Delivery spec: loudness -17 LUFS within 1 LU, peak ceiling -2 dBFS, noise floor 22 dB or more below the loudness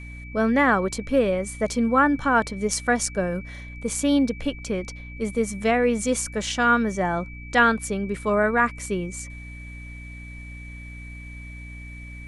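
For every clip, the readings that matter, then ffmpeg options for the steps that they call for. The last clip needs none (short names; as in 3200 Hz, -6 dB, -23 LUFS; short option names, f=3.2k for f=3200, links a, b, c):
hum 60 Hz; harmonics up to 300 Hz; hum level -37 dBFS; steady tone 2300 Hz; tone level -42 dBFS; loudness -23.0 LUFS; peak -5.5 dBFS; loudness target -17.0 LUFS
-> -af "bandreject=f=60:t=h:w=4,bandreject=f=120:t=h:w=4,bandreject=f=180:t=h:w=4,bandreject=f=240:t=h:w=4,bandreject=f=300:t=h:w=4"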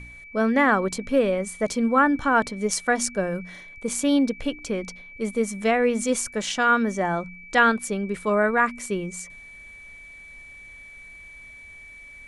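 hum none; steady tone 2300 Hz; tone level -42 dBFS
-> -af "bandreject=f=2.3k:w=30"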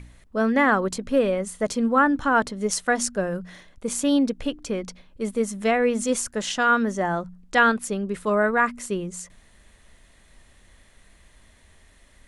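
steady tone none; loudness -23.5 LUFS; peak -5.5 dBFS; loudness target -17.0 LUFS
-> -af "volume=6.5dB,alimiter=limit=-2dB:level=0:latency=1"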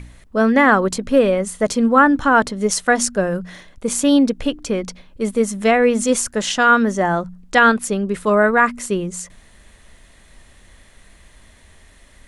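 loudness -17.0 LUFS; peak -2.0 dBFS; noise floor -49 dBFS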